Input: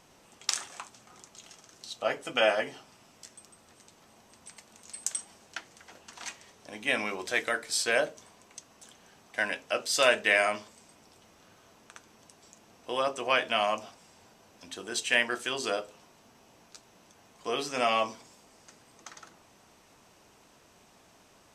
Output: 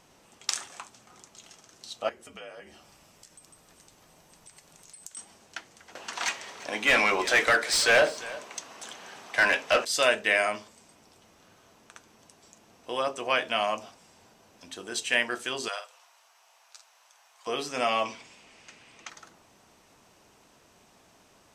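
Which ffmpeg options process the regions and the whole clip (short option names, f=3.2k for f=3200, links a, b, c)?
-filter_complex "[0:a]asettb=1/sr,asplit=3[a][b][c];[a]atrim=end=2.094[d];[b]atrim=start=2.09:end=5.17,asetpts=PTS-STARTPTS,afade=t=in:d=0.004:c=qsin,afade=t=out:st=3.076:d=0.004:c=qsin,acompressor=threshold=-51dB:ratio=2.5:attack=3.2:release=140:knee=1:detection=peak,highshelf=f=10k:g=7.5,afreqshift=-57[e];[c]atrim=start=5.166[f];[d][e]acrossfade=d=0.004:c1=hsin:c2=qsin[g];[g][f]acrossfade=d=0.004:c1=qsin:c2=hsin,asettb=1/sr,asplit=3[h][i][j];[h]atrim=end=5.954[k];[i]atrim=start=5.95:end=9.85,asetpts=PTS-STARTPTS,afade=t=in:d=0.004:c=qsin,afade=t=out:st=3.896:d=0.004:c=qsin,asplit=2[l][m];[m]highpass=f=720:p=1,volume=21dB,asoftclip=type=tanh:threshold=-11dB[n];[l][n]amix=inputs=2:normalize=0,lowpass=f=3.5k:p=1,volume=-6dB,aecho=1:1:344:0.119,atrim=end_sample=171990[o];[j]atrim=start=9.846[p];[k][o]acrossfade=d=0.004:c1=hsin:c2=qsin[q];[q][p]acrossfade=d=0.004:c1=qsin:c2=hsin,asettb=1/sr,asplit=3[r][s][t];[r]atrim=end=15.684[u];[s]atrim=start=15.68:end=17.47,asetpts=PTS-STARTPTS,afade=t=in:d=0.004:c=qsin,afade=t=out:st=1.786:d=0.004:c=qsin,highpass=f=750:w=0.5412,highpass=f=750:w=1.3066,asplit=2[v][w];[w]adelay=49,volume=-7.5dB[x];[v][x]amix=inputs=2:normalize=0,atrim=end_sample=78939[y];[t]atrim=start=17.466[z];[u][y]acrossfade=d=0.004:c1=hsin:c2=qsin[aa];[aa][z]acrossfade=d=0.004:c1=qsin:c2=hsin,asettb=1/sr,asplit=3[ab][ac][ad];[ab]atrim=end=18.054[ae];[ac]atrim=start=18.05:end=19.1,asetpts=PTS-STARTPTS,afade=t=in:d=0.004:c=qsin,afade=t=out:st=1.046:d=0.004:c=qsin,lowpass=9.4k,equalizer=f=2.5k:w=1.3:g=12.5[af];[ad]atrim=start=19.096[ag];[ae][af]acrossfade=d=0.004:c1=hsin:c2=qsin[ah];[ah][ag]acrossfade=d=0.004:c1=qsin:c2=hsin"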